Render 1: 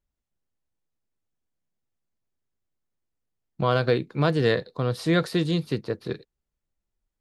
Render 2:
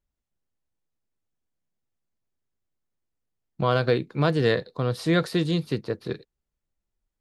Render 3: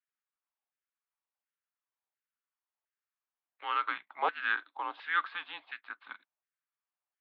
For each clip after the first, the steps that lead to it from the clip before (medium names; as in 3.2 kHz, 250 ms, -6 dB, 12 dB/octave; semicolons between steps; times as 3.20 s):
no audible change
mistuned SSB -200 Hz 490–3300 Hz; LFO high-pass saw down 1.4 Hz 740–1700 Hz; trim -5 dB